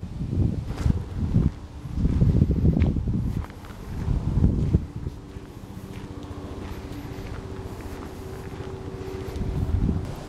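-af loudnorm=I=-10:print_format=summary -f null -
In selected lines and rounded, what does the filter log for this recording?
Input Integrated:    -28.1 LUFS
Input True Peak:      -5.8 dBTP
Input LRA:            11.8 LU
Input Threshold:     -38.4 LUFS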